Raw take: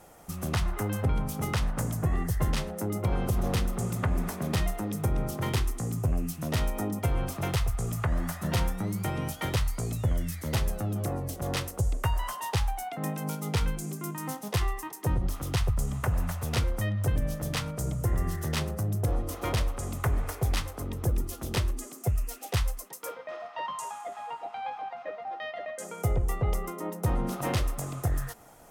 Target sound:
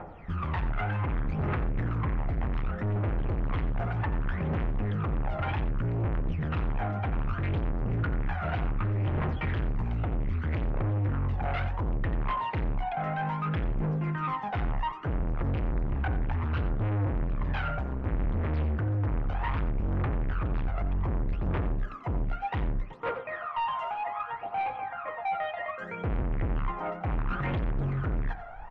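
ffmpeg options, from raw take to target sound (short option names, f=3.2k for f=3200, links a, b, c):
-filter_complex "[0:a]equalizer=f=1.2k:t=o:w=1.5:g=7.5,asplit=2[a][b];[b]alimiter=limit=-21dB:level=0:latency=1,volume=-0.5dB[c];[a][c]amix=inputs=2:normalize=0,asubboost=boost=2.5:cutoff=120,aphaser=in_gain=1:out_gain=1:delay=1.5:decay=0.79:speed=0.65:type=triangular,volume=22dB,asoftclip=hard,volume=-22dB,lowpass=f=2.6k:w=0.5412,lowpass=f=2.6k:w=1.3066,bandreject=f=63.83:t=h:w=4,bandreject=f=127.66:t=h:w=4,bandreject=f=191.49:t=h:w=4,bandreject=f=255.32:t=h:w=4,bandreject=f=319.15:t=h:w=4,bandreject=f=382.98:t=h:w=4,bandreject=f=446.81:t=h:w=4,bandreject=f=510.64:t=h:w=4,bandreject=f=574.47:t=h:w=4,bandreject=f=638.3:t=h:w=4,bandreject=f=702.13:t=h:w=4,bandreject=f=765.96:t=h:w=4,bandreject=f=829.79:t=h:w=4,bandreject=f=893.62:t=h:w=4,bandreject=f=957.45:t=h:w=4,bandreject=f=1.02128k:t=h:w=4,bandreject=f=1.08511k:t=h:w=4,bandreject=f=1.14894k:t=h:w=4,bandreject=f=1.21277k:t=h:w=4,bandreject=f=1.2766k:t=h:w=4,bandreject=f=1.34043k:t=h:w=4,bandreject=f=1.40426k:t=h:w=4,bandreject=f=1.46809k:t=h:w=4,bandreject=f=1.53192k:t=h:w=4,bandreject=f=1.59575k:t=h:w=4,bandreject=f=1.65958k:t=h:w=4,bandreject=f=1.72341k:t=h:w=4,bandreject=f=1.78724k:t=h:w=4,bandreject=f=1.85107k:t=h:w=4,asplit=2[d][e];[e]aecho=0:1:89:0.224[f];[d][f]amix=inputs=2:normalize=0,volume=-5dB"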